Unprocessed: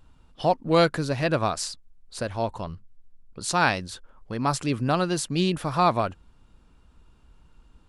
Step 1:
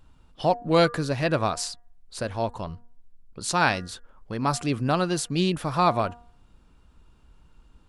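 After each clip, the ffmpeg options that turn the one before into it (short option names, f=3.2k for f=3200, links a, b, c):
-af "bandreject=f=238.2:t=h:w=4,bandreject=f=476.4:t=h:w=4,bandreject=f=714.6:t=h:w=4,bandreject=f=952.8:t=h:w=4,bandreject=f=1.191k:t=h:w=4,bandreject=f=1.4292k:t=h:w=4,bandreject=f=1.6674k:t=h:w=4,bandreject=f=1.9056k:t=h:w=4"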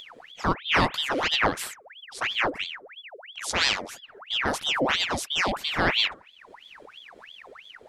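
-af "acompressor=mode=upward:threshold=-36dB:ratio=2.5,equalizer=f=110:t=o:w=0.34:g=13.5,aeval=exprs='val(0)*sin(2*PI*1900*n/s+1900*0.8/3*sin(2*PI*3*n/s))':c=same"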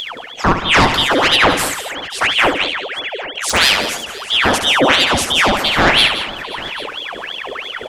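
-af "areverse,acompressor=mode=upward:threshold=-31dB:ratio=2.5,areverse,aeval=exprs='0.398*sin(PI/2*2*val(0)/0.398)':c=same,aecho=1:1:70|172|212|530|797:0.355|0.251|0.126|0.1|0.126,volume=3dB"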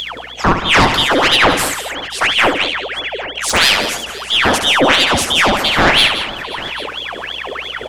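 -filter_complex "[0:a]aeval=exprs='val(0)+0.00501*(sin(2*PI*60*n/s)+sin(2*PI*2*60*n/s)/2+sin(2*PI*3*60*n/s)/3+sin(2*PI*4*60*n/s)/4+sin(2*PI*5*60*n/s)/5)':c=same,aeval=exprs='0.891*(cos(1*acos(clip(val(0)/0.891,-1,1)))-cos(1*PI/2))+0.0355*(cos(4*acos(clip(val(0)/0.891,-1,1)))-cos(4*PI/2))':c=same,asplit=2[a][b];[b]asoftclip=type=tanh:threshold=-10.5dB,volume=-9dB[c];[a][c]amix=inputs=2:normalize=0,volume=-1dB"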